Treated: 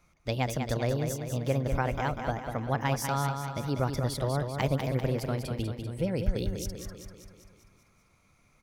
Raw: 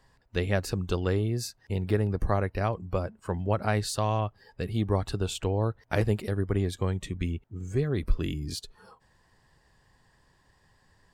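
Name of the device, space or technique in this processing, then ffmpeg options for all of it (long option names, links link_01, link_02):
nightcore: -af "aecho=1:1:252|504|756|1008|1260|1512|1764:0.473|0.27|0.154|0.0876|0.0499|0.0285|0.0162,asetrate=56889,aresample=44100,volume=-2.5dB"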